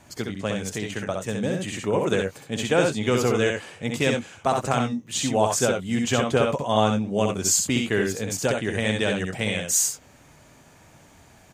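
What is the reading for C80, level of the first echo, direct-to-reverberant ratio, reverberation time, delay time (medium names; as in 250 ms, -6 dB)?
no reverb, -4.0 dB, no reverb, no reverb, 65 ms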